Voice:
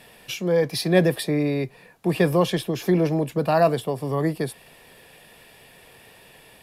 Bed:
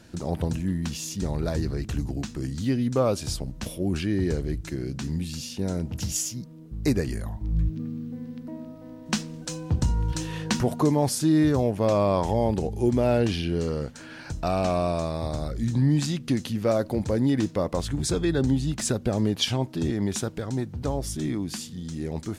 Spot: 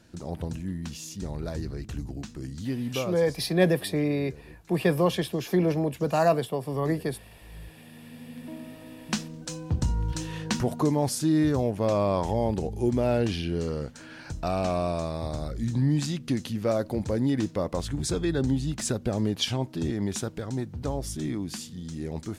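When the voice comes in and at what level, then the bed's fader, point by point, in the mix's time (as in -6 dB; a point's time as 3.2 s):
2.65 s, -3.5 dB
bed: 2.91 s -6 dB
3.5 s -20 dB
7.79 s -20 dB
8.41 s -2.5 dB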